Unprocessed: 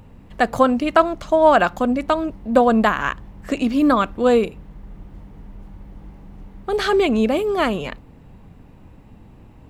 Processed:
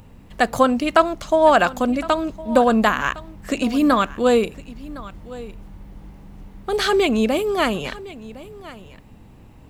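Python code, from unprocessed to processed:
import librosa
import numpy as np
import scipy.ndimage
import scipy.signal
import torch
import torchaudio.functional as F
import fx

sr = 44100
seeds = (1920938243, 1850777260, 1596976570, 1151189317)

y = fx.high_shelf(x, sr, hz=3300.0, db=8.0)
y = y + 10.0 ** (-18.5 / 20.0) * np.pad(y, (int(1060 * sr / 1000.0), 0))[:len(y)]
y = y * librosa.db_to_amplitude(-1.0)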